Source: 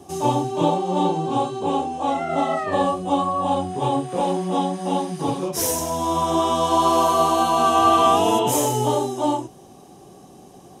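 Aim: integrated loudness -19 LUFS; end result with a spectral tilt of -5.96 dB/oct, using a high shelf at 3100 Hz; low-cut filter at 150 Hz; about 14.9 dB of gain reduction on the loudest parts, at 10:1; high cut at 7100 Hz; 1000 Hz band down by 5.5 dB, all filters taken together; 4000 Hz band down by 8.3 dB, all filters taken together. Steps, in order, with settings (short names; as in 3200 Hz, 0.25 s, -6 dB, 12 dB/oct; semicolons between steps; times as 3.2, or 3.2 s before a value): HPF 150 Hz; LPF 7100 Hz; bell 1000 Hz -6 dB; high shelf 3100 Hz -6 dB; bell 4000 Hz -6.5 dB; compressor 10:1, threshold -32 dBFS; gain +17 dB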